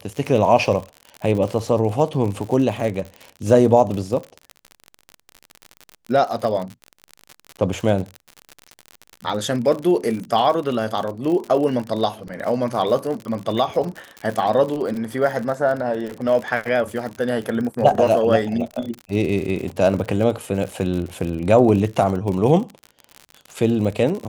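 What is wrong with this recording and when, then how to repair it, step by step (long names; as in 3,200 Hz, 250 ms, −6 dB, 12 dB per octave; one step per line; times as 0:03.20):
surface crackle 58 per second −26 dBFS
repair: click removal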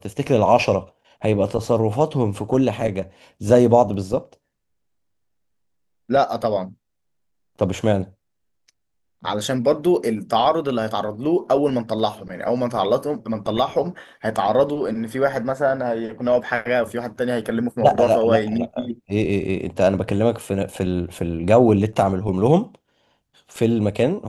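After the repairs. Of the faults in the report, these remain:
none of them is left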